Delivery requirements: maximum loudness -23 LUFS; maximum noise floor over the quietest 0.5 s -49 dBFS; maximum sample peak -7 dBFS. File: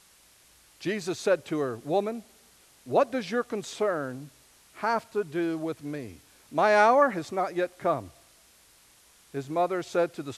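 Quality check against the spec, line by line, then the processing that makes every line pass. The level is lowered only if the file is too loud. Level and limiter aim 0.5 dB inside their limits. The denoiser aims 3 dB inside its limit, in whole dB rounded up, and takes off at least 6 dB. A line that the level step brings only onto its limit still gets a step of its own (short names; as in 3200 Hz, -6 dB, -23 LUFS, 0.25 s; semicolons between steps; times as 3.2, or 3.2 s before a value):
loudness -27.5 LUFS: OK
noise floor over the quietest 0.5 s -59 dBFS: OK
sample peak -8.0 dBFS: OK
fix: none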